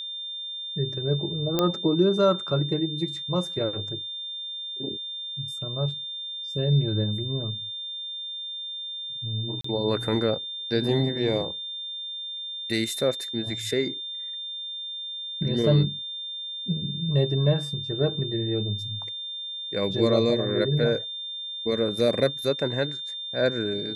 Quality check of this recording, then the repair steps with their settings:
tone 3600 Hz -32 dBFS
1.59 pop -9 dBFS
9.61–9.64 gap 34 ms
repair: de-click; notch 3600 Hz, Q 30; interpolate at 9.61, 34 ms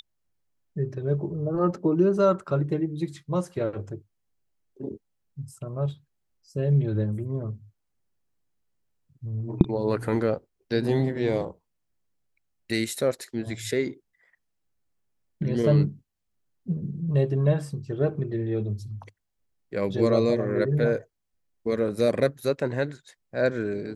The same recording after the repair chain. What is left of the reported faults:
none

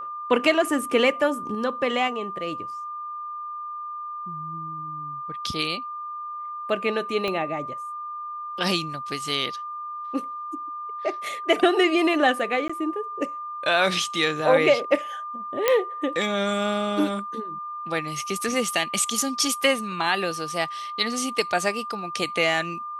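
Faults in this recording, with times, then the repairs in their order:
tone 1200 Hz -31 dBFS
7.28 pop -15 dBFS
12.68–12.7 gap 15 ms
15.68 pop -5 dBFS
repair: de-click; notch 1200 Hz, Q 30; interpolate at 12.68, 15 ms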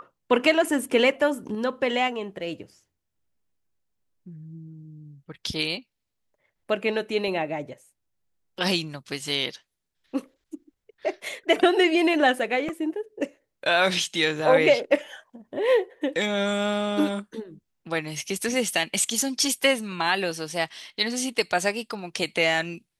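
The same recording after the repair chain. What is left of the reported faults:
7.28 pop

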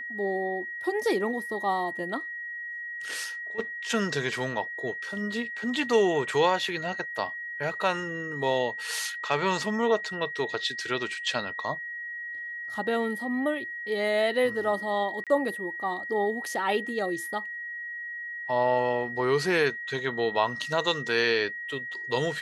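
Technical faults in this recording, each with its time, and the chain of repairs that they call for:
tone 1900 Hz -34 dBFS
15.24–15.27 gap 27 ms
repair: notch 1900 Hz, Q 30; interpolate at 15.24, 27 ms

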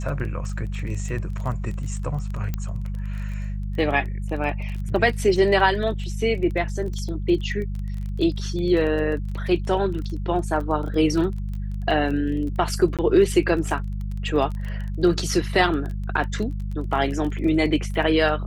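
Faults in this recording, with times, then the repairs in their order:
crackle 21/s -30 dBFS
hum 50 Hz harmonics 4 -28 dBFS
2.54 pop -14 dBFS
12.97–12.99 gap 17 ms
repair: de-click; de-hum 50 Hz, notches 4; interpolate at 12.97, 17 ms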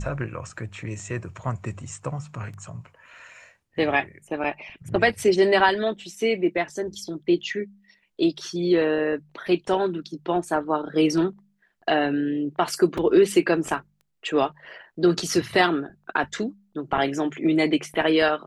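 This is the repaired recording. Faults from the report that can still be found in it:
2.54 pop

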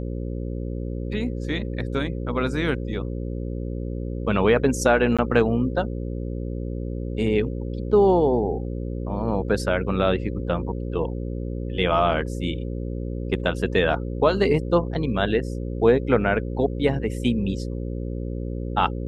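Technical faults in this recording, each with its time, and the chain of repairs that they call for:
buzz 60 Hz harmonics 9 -29 dBFS
5.17–5.19 gap 16 ms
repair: de-hum 60 Hz, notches 9; interpolate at 5.17, 16 ms

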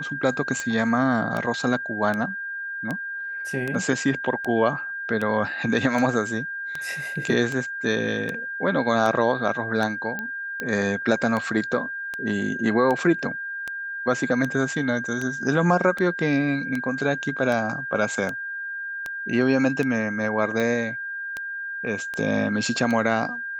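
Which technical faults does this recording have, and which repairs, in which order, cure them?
tick 78 rpm -15 dBFS
tone 1600 Hz -29 dBFS
10.19 pop -17 dBFS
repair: de-click; notch 1600 Hz, Q 30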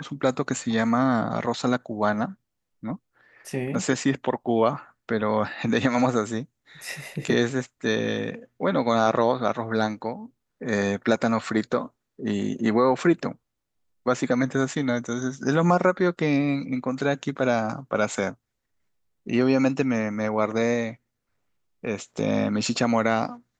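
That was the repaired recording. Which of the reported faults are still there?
none

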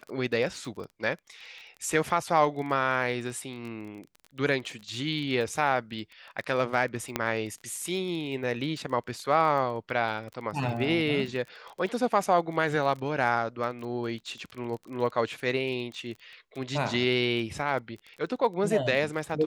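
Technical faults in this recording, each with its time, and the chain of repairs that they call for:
crackle 27/s -36 dBFS
7.16 pop -11 dBFS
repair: de-click

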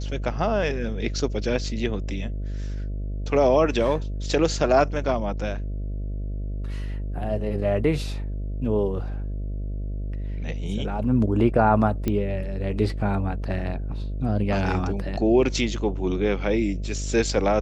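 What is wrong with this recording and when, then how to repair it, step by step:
buzz 50 Hz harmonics 13 -29 dBFS
12.08 pop -12 dBFS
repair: de-click; de-hum 50 Hz, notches 13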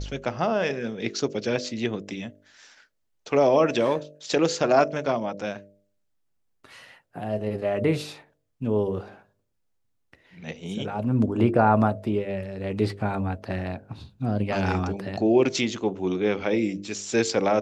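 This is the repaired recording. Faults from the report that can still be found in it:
none

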